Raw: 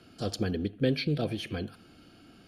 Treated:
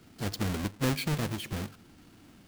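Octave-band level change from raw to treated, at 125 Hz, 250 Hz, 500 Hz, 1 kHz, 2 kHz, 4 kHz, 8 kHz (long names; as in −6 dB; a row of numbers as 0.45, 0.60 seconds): +0.5, −2.0, −5.5, +4.5, +2.0, −0.5, +8.0 decibels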